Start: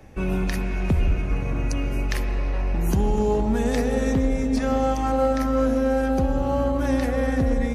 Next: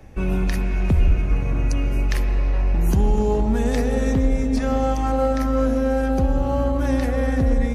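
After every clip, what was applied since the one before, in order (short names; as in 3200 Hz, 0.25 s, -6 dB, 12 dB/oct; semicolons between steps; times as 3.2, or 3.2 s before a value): low shelf 95 Hz +6 dB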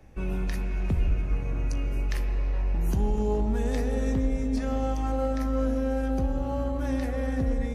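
resonator 52 Hz, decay 0.21 s, harmonics all, mix 60%; gain -5 dB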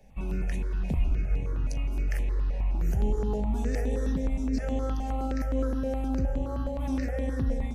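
step phaser 9.6 Hz 330–4900 Hz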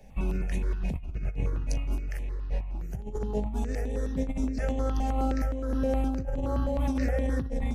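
negative-ratio compressor -29 dBFS, ratio -0.5; gain +1.5 dB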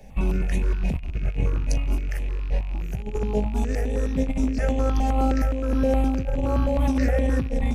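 rattling part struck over -36 dBFS, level -40 dBFS; gain +6 dB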